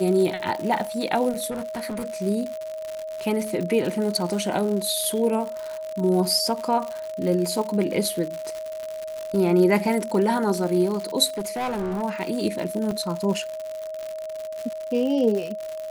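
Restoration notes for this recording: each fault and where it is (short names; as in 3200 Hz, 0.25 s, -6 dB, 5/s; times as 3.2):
crackle 140/s -28 dBFS
tone 630 Hz -30 dBFS
1.5–2.22 clipped -26.5 dBFS
11.3–12.03 clipped -24 dBFS
12.91 gap 3.7 ms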